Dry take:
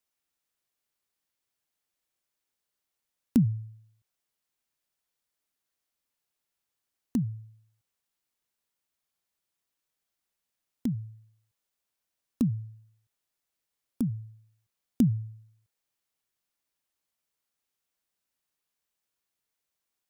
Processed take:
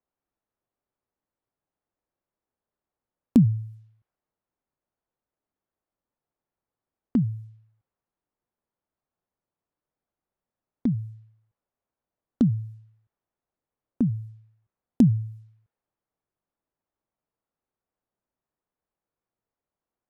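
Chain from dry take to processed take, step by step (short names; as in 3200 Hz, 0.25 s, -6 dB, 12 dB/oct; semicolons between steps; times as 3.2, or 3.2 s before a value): low-pass opened by the level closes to 940 Hz, open at -31.5 dBFS; gain +5.5 dB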